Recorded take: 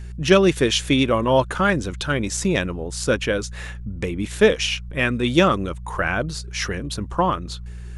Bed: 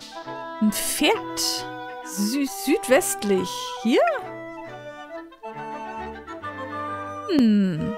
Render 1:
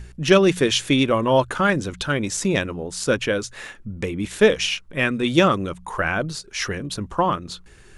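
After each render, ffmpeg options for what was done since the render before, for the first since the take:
-af "bandreject=f=60:t=h:w=4,bandreject=f=120:t=h:w=4,bandreject=f=180:t=h:w=4"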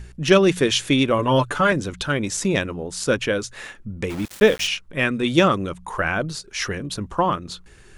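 -filter_complex "[0:a]asettb=1/sr,asplit=3[a][b][c];[a]atrim=end=1.184[d];[b]atrim=start=1.18:end=1.72,asetpts=PTS-STARTPTS,afade=t=in:d=0.004:c=qsin,afade=t=out:st=0.536:d=0.004:c=qsin,aecho=1:1:6.9:0.65,atrim=end_sample=23814[e];[c]atrim=start=1.716[f];[d][e]acrossfade=d=0.004:c1=hsin:c2=qsin[g];[g][f]acrossfade=d=0.004:c1=qsin:c2=hsin,asplit=3[h][i][j];[h]afade=t=out:st=4.09:d=0.02[k];[i]aeval=exprs='val(0)*gte(abs(val(0)),0.0316)':c=same,afade=t=in:st=4.09:d=0.02,afade=t=out:st=4.66:d=0.02[l];[j]afade=t=in:st=4.66:d=0.02[m];[k][l][m]amix=inputs=3:normalize=0"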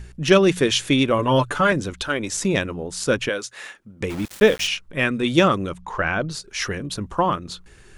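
-filter_complex "[0:a]asettb=1/sr,asplit=3[a][b][c];[a]atrim=end=1.934[d];[b]atrim=start=1.93:end=2.33,asetpts=PTS-STARTPTS,afade=t=in:d=0.004:c=qsin,afade=t=out:st=0.396:d=0.004:c=qsin,equalizer=f=150:t=o:w=0.77:g=-12.5[e];[c]atrim=start=2.326[f];[d][e]acrossfade=d=0.004:c1=hsin:c2=qsin[g];[g][f]acrossfade=d=0.004:c1=qsin:c2=hsin,asettb=1/sr,asplit=3[h][i][j];[h]atrim=end=3.294[k];[i]atrim=start=3.29:end=4.01,asetpts=PTS-STARTPTS,afade=t=in:d=0.004:c=qsin,afade=t=out:st=0.716:d=0.004:c=qsin,highpass=f=590:p=1[l];[j]atrim=start=4.006[m];[k][l]acrossfade=d=0.004:c1=hsin:c2=qsin[n];[n][m]acrossfade=d=0.004:c1=qsin:c2=hsin,asettb=1/sr,asplit=3[o][p][q];[o]atrim=end=5.814[r];[p]atrim=start=5.81:end=6.31,asetpts=PTS-STARTPTS,afade=t=in:d=0.004:c=qsin,afade=t=out:st=0.496:d=0.004:c=qsin,lowpass=f=6.4k:w=0.5412,lowpass=f=6.4k:w=1.3066[s];[q]atrim=start=6.306[t];[r][s]acrossfade=d=0.004:c1=hsin:c2=qsin[u];[u][t]acrossfade=d=0.004:c1=qsin:c2=hsin"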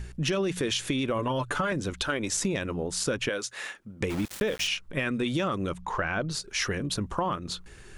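-af "alimiter=limit=-12.5dB:level=0:latency=1:release=18,acompressor=threshold=-25dB:ratio=6"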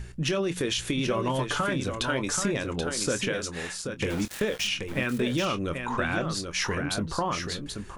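-filter_complex "[0:a]asplit=2[a][b];[b]adelay=24,volume=-12dB[c];[a][c]amix=inputs=2:normalize=0,aecho=1:1:781:0.473"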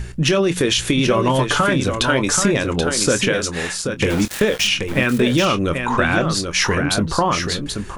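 -af "volume=10.5dB"

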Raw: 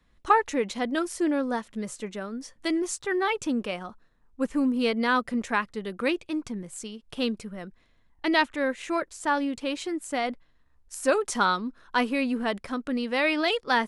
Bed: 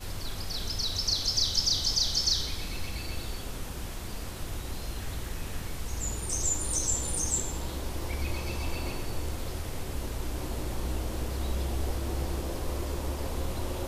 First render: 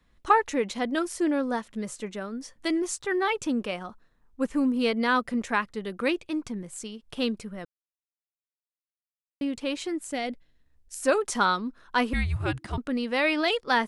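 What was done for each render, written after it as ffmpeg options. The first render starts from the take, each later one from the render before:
-filter_complex "[0:a]asettb=1/sr,asplit=3[a][b][c];[a]atrim=end=10.114[d];[b]atrim=start=10.11:end=11.02,asetpts=PTS-STARTPTS,afade=t=in:d=0.004:c=qsin,afade=t=out:st=0.906:d=0.004:c=qsin,equalizer=f=1.1k:t=o:w=0.97:g=-11.5[e];[c]atrim=start=11.016[f];[d][e]acrossfade=d=0.004:c1=hsin:c2=qsin[g];[g][f]acrossfade=d=0.004:c1=qsin:c2=hsin,asettb=1/sr,asplit=3[h][i][j];[h]atrim=end=12.134[k];[i]atrim=start=12.13:end=12.78,asetpts=PTS-STARTPTS,afade=t=in:d=0.004:c=qsin,afade=t=out:st=0.646:d=0.004:c=qsin,afreqshift=-330[l];[j]atrim=start=12.776[m];[k][l]acrossfade=d=0.004:c1=hsin:c2=qsin[n];[n][m]acrossfade=d=0.004:c1=qsin:c2=hsin,asplit=3[o][p][q];[o]atrim=end=7.65,asetpts=PTS-STARTPTS,afade=t=out:st=7.646:d=0.004:c=hsin[r];[p]atrim=start=7.65:end=9.41,asetpts=PTS-STARTPTS,volume=0[s];[q]atrim=start=9.41,asetpts=PTS-STARTPTS,afade=t=in:d=0.004:c=hsin[t];[r][s][t]concat=n=3:v=0:a=1"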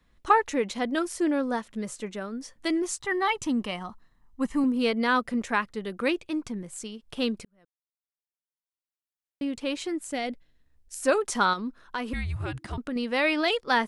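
-filter_complex "[0:a]asettb=1/sr,asplit=3[a][b][c];[a]atrim=end=3.004[d];[b]atrim=start=3:end=4.64,asetpts=PTS-STARTPTS,afade=t=in:d=0.004:c=qsin,afade=t=out:st=1.636:d=0.004:c=qsin,aecho=1:1:1:0.5,atrim=end_sample=72324[e];[c]atrim=start=4.636[f];[d][e]acrossfade=d=0.004:c1=hsin:c2=qsin[g];[g][f]acrossfade=d=0.004:c1=qsin:c2=hsin,asettb=1/sr,asplit=3[h][i][j];[h]atrim=end=11.534[k];[i]atrim=start=11.53:end=12.96,asetpts=PTS-STARTPTS,afade=t=in:d=0.004:c=qsin,afade=t=out:st=1.426:d=0.004:c=qsin,acompressor=threshold=-27dB:ratio=6:attack=3.2:release=140:knee=1:detection=peak[l];[j]atrim=start=12.956[m];[k][l]acrossfade=d=0.004:c1=hsin:c2=qsin[n];[n][m]acrossfade=d=0.004:c1=qsin:c2=hsin,asplit=2[o][p];[o]atrim=end=7.45,asetpts=PTS-STARTPTS,afade=t=out:st=7.446:d=0.004:c=hsin[q];[p]atrim=start=7.45,asetpts=PTS-STARTPTS,afade=t=in:d=2.24[r];[q][r]concat=n=2:v=0:a=1"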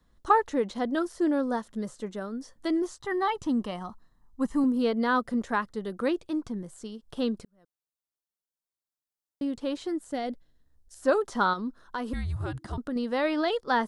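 -filter_complex "[0:a]acrossover=split=4100[a][b];[b]acompressor=threshold=-50dB:ratio=4:attack=1:release=60[c];[a][c]amix=inputs=2:normalize=0,equalizer=f=2.4k:w=2.2:g=-13"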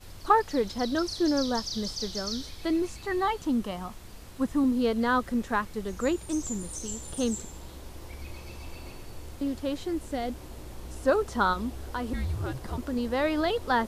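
-filter_complex "[1:a]volume=-9dB[a];[0:a][a]amix=inputs=2:normalize=0"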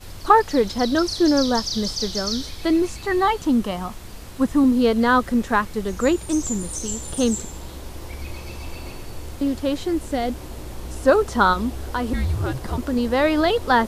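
-af "volume=8dB,alimiter=limit=-3dB:level=0:latency=1"

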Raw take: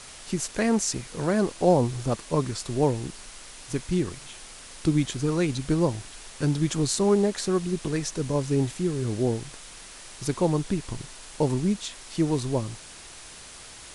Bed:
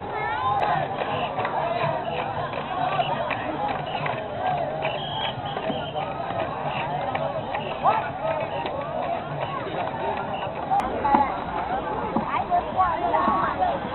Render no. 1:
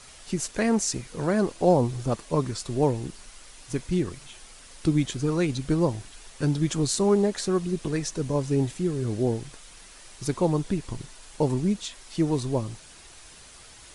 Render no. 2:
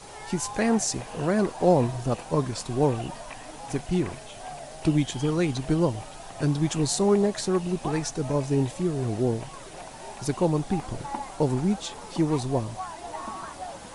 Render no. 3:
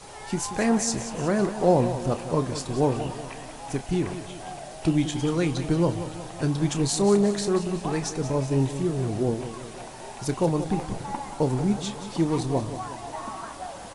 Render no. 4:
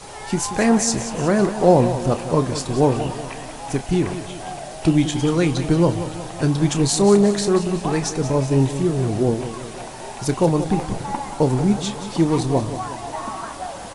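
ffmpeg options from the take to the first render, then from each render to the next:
-af "afftdn=nr=6:nf=-45"
-filter_complex "[1:a]volume=-14.5dB[a];[0:a][a]amix=inputs=2:normalize=0"
-filter_complex "[0:a]asplit=2[a][b];[b]adelay=30,volume=-12dB[c];[a][c]amix=inputs=2:normalize=0,asplit=2[d][e];[e]aecho=0:1:182|364|546|728|910:0.266|0.136|0.0692|0.0353|0.018[f];[d][f]amix=inputs=2:normalize=0"
-af "volume=6dB"

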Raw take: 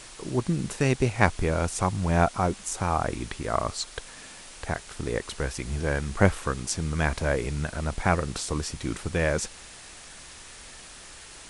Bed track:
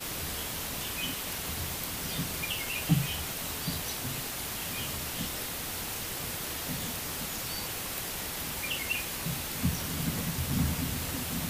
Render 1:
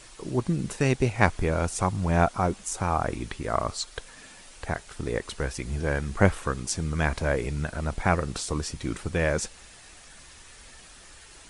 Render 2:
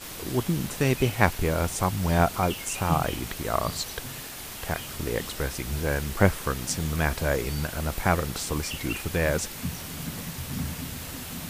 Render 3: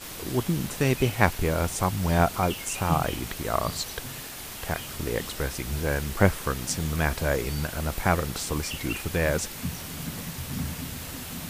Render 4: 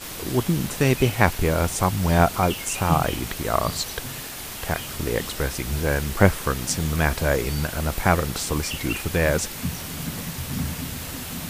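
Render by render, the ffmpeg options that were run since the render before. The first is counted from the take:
-af "afftdn=nr=6:nf=-46"
-filter_complex "[1:a]volume=-3dB[a];[0:a][a]amix=inputs=2:normalize=0"
-af anull
-af "volume=4dB,alimiter=limit=-1dB:level=0:latency=1"

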